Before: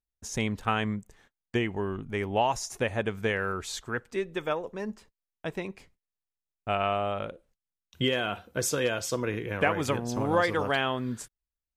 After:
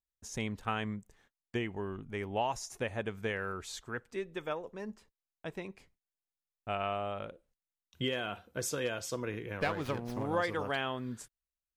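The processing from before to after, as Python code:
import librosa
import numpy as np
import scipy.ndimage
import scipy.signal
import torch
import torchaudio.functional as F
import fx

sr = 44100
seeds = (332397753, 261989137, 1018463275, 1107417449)

y = fx.running_max(x, sr, window=5, at=(9.6, 10.24))
y = y * 10.0 ** (-7.0 / 20.0)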